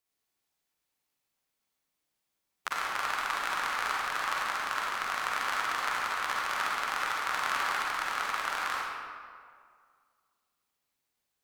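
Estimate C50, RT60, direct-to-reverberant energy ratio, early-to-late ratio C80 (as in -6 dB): -3.5 dB, 2.0 s, -5.0 dB, -1.0 dB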